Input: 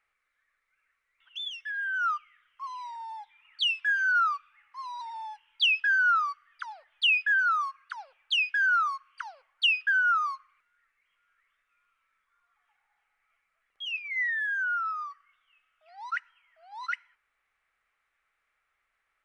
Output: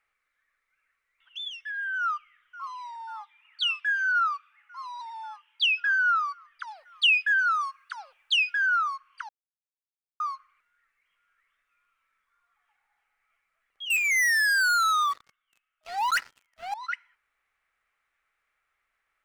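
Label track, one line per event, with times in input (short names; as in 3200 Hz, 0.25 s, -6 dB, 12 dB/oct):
1.990000	2.680000	echo throw 0.54 s, feedback 85%, level -16 dB
3.210000	5.920000	HPF 530 Hz
6.670000	8.540000	high shelf 3900 Hz +8 dB
9.290000	10.200000	mute
13.900000	16.740000	sample leveller passes 5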